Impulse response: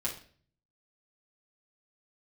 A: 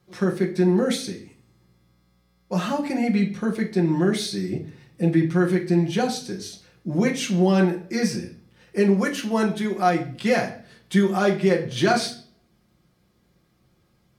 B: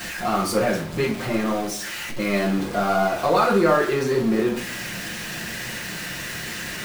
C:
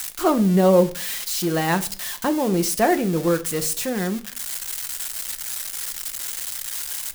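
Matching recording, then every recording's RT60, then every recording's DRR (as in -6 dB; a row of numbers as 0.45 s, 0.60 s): B; 0.45 s, 0.45 s, 0.45 s; -0.5 dB, -6.0 dB, 8.0 dB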